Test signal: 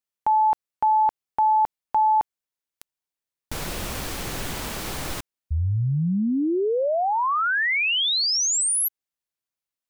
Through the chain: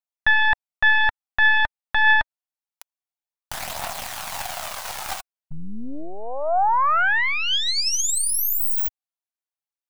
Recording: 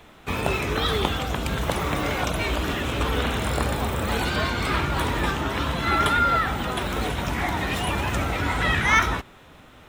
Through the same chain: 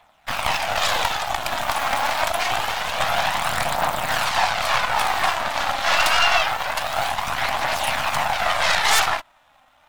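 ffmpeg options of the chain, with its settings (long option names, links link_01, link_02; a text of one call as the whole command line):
ffmpeg -i in.wav -af "aeval=exprs='0.501*(cos(1*acos(clip(val(0)/0.501,-1,1)))-cos(1*PI/2))+0.112*(cos(7*acos(clip(val(0)/0.501,-1,1)))-cos(7*PI/2))+0.251*(cos(8*acos(clip(val(0)/0.501,-1,1)))-cos(8*PI/2))':channel_layout=same,aphaser=in_gain=1:out_gain=1:delay=3.8:decay=0.32:speed=0.26:type=triangular,lowshelf=frequency=540:width_type=q:width=3:gain=-10,volume=-4dB" out.wav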